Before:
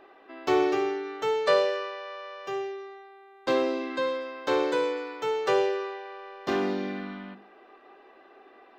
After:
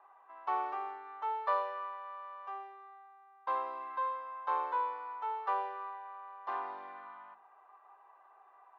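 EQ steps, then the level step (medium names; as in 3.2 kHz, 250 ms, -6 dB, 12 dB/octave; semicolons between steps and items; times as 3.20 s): ladder band-pass 1.1 kHz, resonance 35%; peaking EQ 1 kHz +12 dB 0.63 oct; -1.5 dB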